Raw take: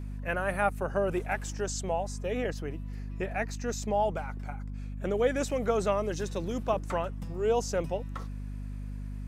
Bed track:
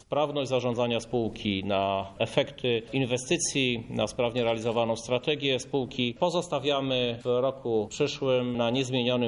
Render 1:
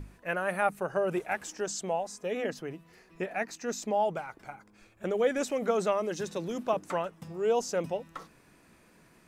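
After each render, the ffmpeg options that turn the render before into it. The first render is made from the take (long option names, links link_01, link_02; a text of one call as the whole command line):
ffmpeg -i in.wav -af "bandreject=frequency=50:width_type=h:width=6,bandreject=frequency=100:width_type=h:width=6,bandreject=frequency=150:width_type=h:width=6,bandreject=frequency=200:width_type=h:width=6,bandreject=frequency=250:width_type=h:width=6" out.wav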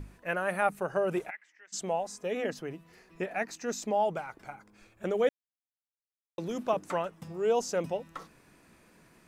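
ffmpeg -i in.wav -filter_complex "[0:a]asplit=3[link_01][link_02][link_03];[link_01]afade=type=out:start_time=1.29:duration=0.02[link_04];[link_02]bandpass=frequency=2000:width_type=q:width=10,afade=type=in:start_time=1.29:duration=0.02,afade=type=out:start_time=1.72:duration=0.02[link_05];[link_03]afade=type=in:start_time=1.72:duration=0.02[link_06];[link_04][link_05][link_06]amix=inputs=3:normalize=0,asplit=3[link_07][link_08][link_09];[link_07]atrim=end=5.29,asetpts=PTS-STARTPTS,afade=type=out:start_time=5.286:duration=0.004:curve=hsin[link_10];[link_08]atrim=start=5.29:end=6.38,asetpts=PTS-STARTPTS,volume=0[link_11];[link_09]atrim=start=6.38,asetpts=PTS-STARTPTS,afade=type=in:duration=0.004:curve=hsin[link_12];[link_10][link_11][link_12]concat=n=3:v=0:a=1" out.wav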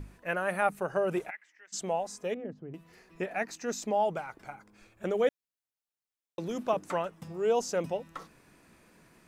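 ffmpeg -i in.wav -filter_complex "[0:a]asettb=1/sr,asplit=3[link_01][link_02][link_03];[link_01]atrim=end=2.344[link_04];[link_02]atrim=start=2.34:end=2.74,asetpts=PTS-STARTPTS,afade=type=in:duration=0.004:curve=qsin,afade=type=out:start_time=0.396:duration=0.004:curve=qsin,bandpass=frequency=140:width_type=q:width=0.76[link_05];[link_03]atrim=start=2.736[link_06];[link_04][link_05]acrossfade=duration=0.004:curve1=hsin:curve2=qsin[link_07];[link_07][link_06]acrossfade=duration=0.004:curve1=qsin:curve2=hsin" out.wav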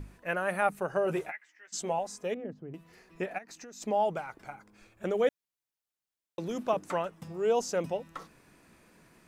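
ffmpeg -i in.wav -filter_complex "[0:a]asettb=1/sr,asplit=3[link_01][link_02][link_03];[link_01]atrim=end=1.054[link_04];[link_02]atrim=start=1.05:end=1.99,asetpts=PTS-STARTPTS,afade=type=in:duration=0.004:curve=qsin,afade=type=out:start_time=0.936:duration=0.004:curve=qsin,asplit=2[link_05][link_06];[link_06]adelay=13,volume=-6dB[link_07];[link_05][link_07]amix=inputs=2:normalize=0,atrim=end_sample=41454[link_08];[link_03]atrim=start=1.986[link_09];[link_04][link_08]acrossfade=duration=0.004:curve1=hsin:curve2=qsin[link_10];[link_10][link_09]acrossfade=duration=0.004:curve1=qsin:curve2=hsin,asplit=3[link_11][link_12][link_13];[link_11]afade=type=out:start_time=3.37:duration=0.02[link_14];[link_12]acompressor=threshold=-43dB:ratio=16:attack=3.2:release=140:knee=1:detection=peak,afade=type=in:start_time=3.37:duration=0.02,afade=type=out:start_time=3.8:duration=0.02[link_15];[link_13]afade=type=in:start_time=3.8:duration=0.02[link_16];[link_14][link_15][link_16]amix=inputs=3:normalize=0" out.wav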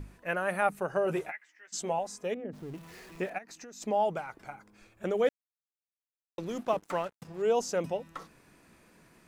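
ffmpeg -i in.wav -filter_complex "[0:a]asettb=1/sr,asplit=3[link_01][link_02][link_03];[link_01]atrim=end=2.534[link_04];[link_02]atrim=start=2.53:end=3.3,asetpts=PTS-STARTPTS,afade=type=in:duration=0.004:curve=qsin,afade=type=out:start_time=0.766:duration=0.004:curve=qsin,aeval=exprs='val(0)+0.5*0.00422*sgn(val(0))':channel_layout=same[link_05];[link_03]atrim=start=3.296[link_06];[link_04][link_05]acrossfade=duration=0.004:curve1=hsin:curve2=qsin[link_07];[link_07][link_06]acrossfade=duration=0.004:curve1=qsin:curve2=hsin,asettb=1/sr,asplit=3[link_08][link_09][link_10];[link_08]atrim=end=5.254[link_11];[link_09]atrim=start=5.25:end=7.42,asetpts=PTS-STARTPTS,afade=type=in:duration=0.004:curve=qsin,afade=type=out:start_time=2.166:duration=0.004:curve=qsin,aeval=exprs='sgn(val(0))*max(abs(val(0))-0.00335,0)':channel_layout=same[link_12];[link_10]atrim=start=7.416[link_13];[link_11][link_12]acrossfade=duration=0.004:curve1=hsin:curve2=qsin[link_14];[link_14][link_13]acrossfade=duration=0.004:curve1=qsin:curve2=hsin" out.wav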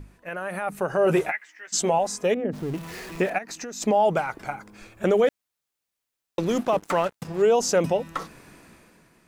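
ffmpeg -i in.wav -af "alimiter=limit=-24dB:level=0:latency=1:release=56,dynaudnorm=framelen=110:gausssize=13:maxgain=12dB" out.wav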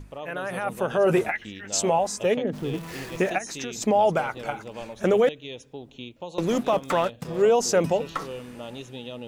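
ffmpeg -i in.wav -i bed.wav -filter_complex "[1:a]volume=-11.5dB[link_01];[0:a][link_01]amix=inputs=2:normalize=0" out.wav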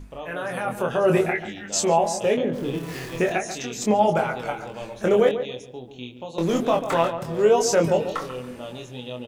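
ffmpeg -i in.wav -filter_complex "[0:a]asplit=2[link_01][link_02];[link_02]adelay=24,volume=-4dB[link_03];[link_01][link_03]amix=inputs=2:normalize=0,asplit=2[link_04][link_05];[link_05]adelay=141,lowpass=frequency=1300:poles=1,volume=-9dB,asplit=2[link_06][link_07];[link_07]adelay=141,lowpass=frequency=1300:poles=1,volume=0.33,asplit=2[link_08][link_09];[link_09]adelay=141,lowpass=frequency=1300:poles=1,volume=0.33,asplit=2[link_10][link_11];[link_11]adelay=141,lowpass=frequency=1300:poles=1,volume=0.33[link_12];[link_04][link_06][link_08][link_10][link_12]amix=inputs=5:normalize=0" out.wav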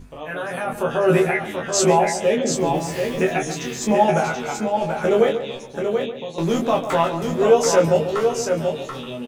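ffmpeg -i in.wav -filter_complex "[0:a]asplit=2[link_01][link_02];[link_02]adelay=13,volume=-2.5dB[link_03];[link_01][link_03]amix=inputs=2:normalize=0,asplit=2[link_04][link_05];[link_05]aecho=0:1:733:0.531[link_06];[link_04][link_06]amix=inputs=2:normalize=0" out.wav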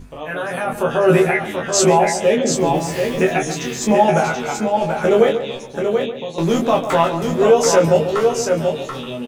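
ffmpeg -i in.wav -af "volume=3.5dB,alimiter=limit=-3dB:level=0:latency=1" out.wav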